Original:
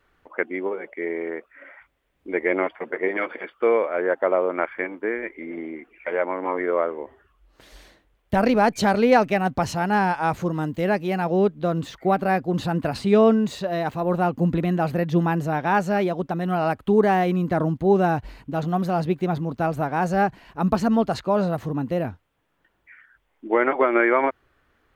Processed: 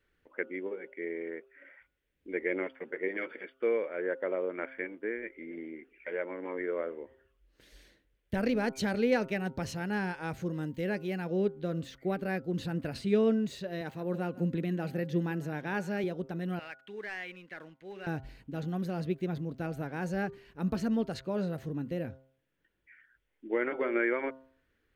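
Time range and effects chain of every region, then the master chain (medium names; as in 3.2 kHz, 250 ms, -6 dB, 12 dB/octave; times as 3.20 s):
13.81–16.04 s: high-pass 120 Hz + delay 152 ms -19 dB
16.59–18.07 s: band-pass filter 2.2 kHz, Q 1.7 + waveshaping leveller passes 1
whole clip: high-order bell 910 Hz -9.5 dB 1.2 oct; band-stop 7.3 kHz, Q 28; de-hum 132.4 Hz, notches 11; trim -9 dB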